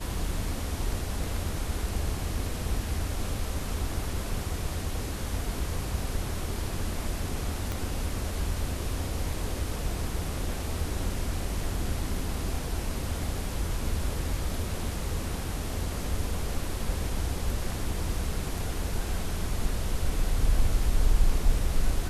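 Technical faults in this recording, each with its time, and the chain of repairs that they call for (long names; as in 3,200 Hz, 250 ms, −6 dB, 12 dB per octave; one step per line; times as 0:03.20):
0:07.72: click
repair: click removal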